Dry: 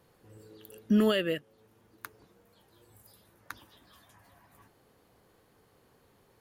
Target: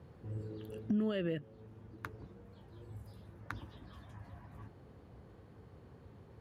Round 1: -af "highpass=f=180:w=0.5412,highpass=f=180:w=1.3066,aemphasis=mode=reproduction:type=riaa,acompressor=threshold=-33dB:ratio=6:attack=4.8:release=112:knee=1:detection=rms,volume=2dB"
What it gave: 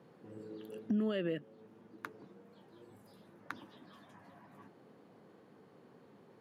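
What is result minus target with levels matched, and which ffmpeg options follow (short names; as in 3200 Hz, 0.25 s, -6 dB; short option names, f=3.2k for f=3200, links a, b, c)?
125 Hz band -8.0 dB
-af "highpass=f=57:w=0.5412,highpass=f=57:w=1.3066,aemphasis=mode=reproduction:type=riaa,acompressor=threshold=-33dB:ratio=6:attack=4.8:release=112:knee=1:detection=rms,volume=2dB"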